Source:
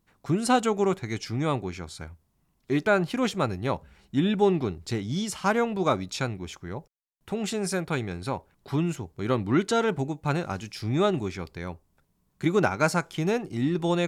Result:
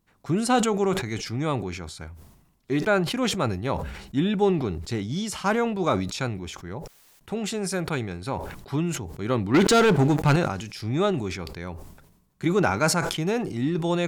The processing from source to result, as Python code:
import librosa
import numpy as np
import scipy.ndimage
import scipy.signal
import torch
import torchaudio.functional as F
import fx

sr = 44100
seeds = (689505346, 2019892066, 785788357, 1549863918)

y = fx.leveller(x, sr, passes=3, at=(9.54, 10.36))
y = fx.sustainer(y, sr, db_per_s=59.0)